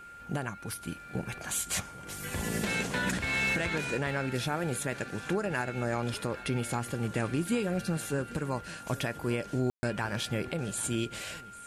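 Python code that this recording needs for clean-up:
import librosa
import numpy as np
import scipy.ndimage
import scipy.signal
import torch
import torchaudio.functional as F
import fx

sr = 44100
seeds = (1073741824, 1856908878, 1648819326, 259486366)

y = fx.fix_declick_ar(x, sr, threshold=6.5)
y = fx.notch(y, sr, hz=1400.0, q=30.0)
y = fx.fix_ambience(y, sr, seeds[0], print_start_s=11.15, print_end_s=11.65, start_s=9.7, end_s=9.83)
y = fx.fix_echo_inverse(y, sr, delay_ms=795, level_db=-18.0)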